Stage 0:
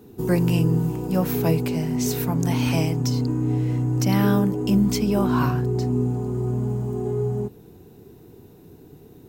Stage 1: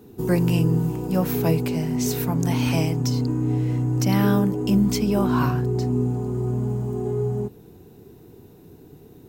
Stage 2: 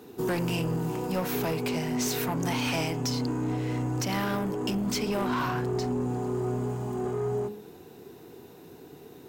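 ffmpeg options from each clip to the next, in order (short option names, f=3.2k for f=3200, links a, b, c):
-af anull
-filter_complex "[0:a]asplit=2[a][b];[b]highpass=f=720:p=1,volume=22dB,asoftclip=type=tanh:threshold=-8dB[c];[a][c]amix=inputs=2:normalize=0,lowpass=f=5.4k:p=1,volume=-6dB,bandreject=f=104.5:t=h:w=4,bandreject=f=209:t=h:w=4,bandreject=f=313.5:t=h:w=4,bandreject=f=418:t=h:w=4,bandreject=f=522.5:t=h:w=4,bandreject=f=627:t=h:w=4,bandreject=f=731.5:t=h:w=4,bandreject=f=836:t=h:w=4,bandreject=f=940.5:t=h:w=4,bandreject=f=1.045k:t=h:w=4,bandreject=f=1.1495k:t=h:w=4,bandreject=f=1.254k:t=h:w=4,bandreject=f=1.3585k:t=h:w=4,bandreject=f=1.463k:t=h:w=4,bandreject=f=1.5675k:t=h:w=4,bandreject=f=1.672k:t=h:w=4,bandreject=f=1.7765k:t=h:w=4,bandreject=f=1.881k:t=h:w=4,bandreject=f=1.9855k:t=h:w=4,bandreject=f=2.09k:t=h:w=4,bandreject=f=2.1945k:t=h:w=4,bandreject=f=2.299k:t=h:w=4,bandreject=f=2.4035k:t=h:w=4,bandreject=f=2.508k:t=h:w=4,bandreject=f=2.6125k:t=h:w=4,bandreject=f=2.717k:t=h:w=4,bandreject=f=2.8215k:t=h:w=4,bandreject=f=2.926k:t=h:w=4,bandreject=f=3.0305k:t=h:w=4,bandreject=f=3.135k:t=h:w=4,bandreject=f=3.2395k:t=h:w=4,bandreject=f=3.344k:t=h:w=4,bandreject=f=3.4485k:t=h:w=4,alimiter=limit=-12dB:level=0:latency=1:release=200,volume=-9dB"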